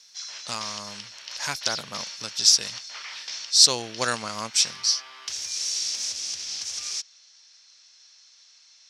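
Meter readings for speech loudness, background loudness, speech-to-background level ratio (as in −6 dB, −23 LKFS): −21.5 LKFS, −32.0 LKFS, 10.5 dB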